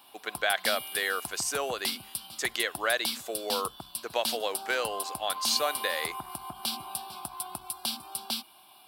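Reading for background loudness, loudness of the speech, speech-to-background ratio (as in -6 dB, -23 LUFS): -35.0 LUFS, -31.0 LUFS, 4.0 dB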